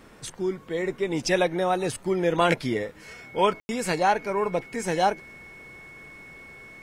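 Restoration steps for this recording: notch 2200 Hz, Q 30; room tone fill 3.6–3.69

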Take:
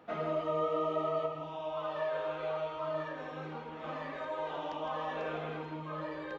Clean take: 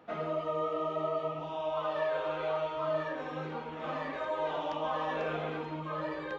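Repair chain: inverse comb 0.161 s -9.5 dB; gain correction +4 dB, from 1.26

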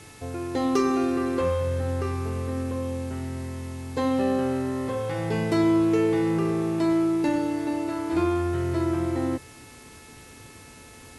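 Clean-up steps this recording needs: clip repair -13.5 dBFS; de-hum 435.4 Hz, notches 6; noise print and reduce 24 dB

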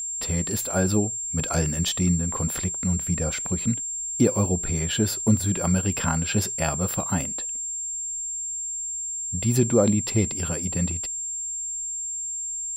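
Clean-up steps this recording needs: de-click; notch 7400 Hz, Q 30; expander -23 dBFS, range -21 dB

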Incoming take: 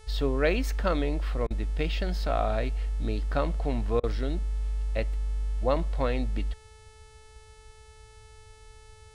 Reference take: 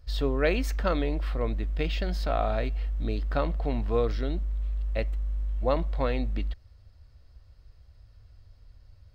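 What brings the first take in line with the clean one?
de-hum 436 Hz, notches 25; interpolate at 1.47/4, 34 ms

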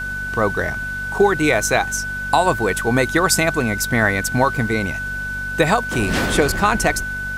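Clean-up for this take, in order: de-hum 48.4 Hz, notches 5; notch 1500 Hz, Q 30; noise print and reduce 30 dB

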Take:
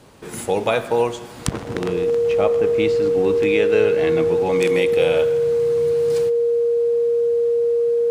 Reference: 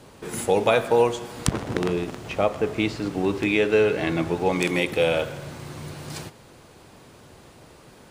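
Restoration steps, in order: notch 470 Hz, Q 30

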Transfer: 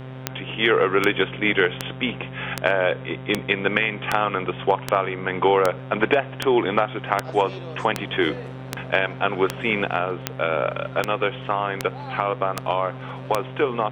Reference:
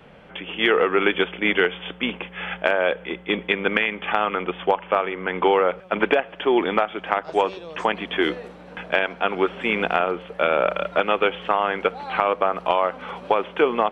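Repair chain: de-click; de-hum 130 Hz, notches 29; gain correction +3 dB, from 9.84

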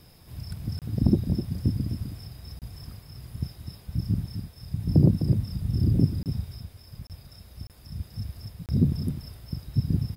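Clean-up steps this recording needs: interpolate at 0.79/2.59/6.23/7.07/7.67/8.66, 28 ms; inverse comb 0.255 s -9 dB

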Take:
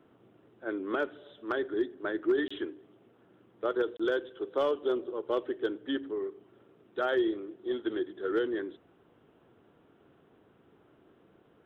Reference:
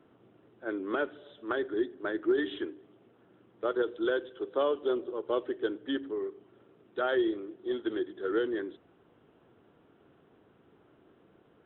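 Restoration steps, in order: clip repair -20 dBFS; interpolate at 2.48/3.97, 25 ms

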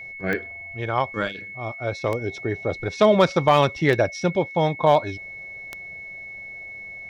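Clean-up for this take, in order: clip repair -7 dBFS; de-click; notch 2200 Hz, Q 30

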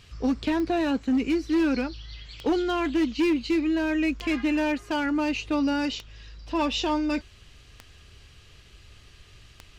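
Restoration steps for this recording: clip repair -18.5 dBFS; de-click

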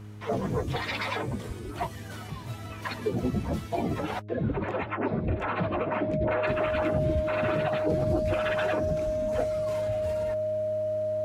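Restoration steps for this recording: de-hum 104.4 Hz, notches 4; notch 620 Hz, Q 30

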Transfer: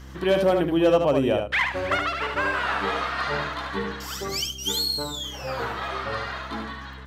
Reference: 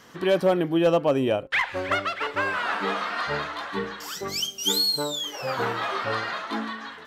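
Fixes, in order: de-click; de-hum 65.7 Hz, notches 5; inverse comb 74 ms -5 dB; gain correction +3.5 dB, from 4.43

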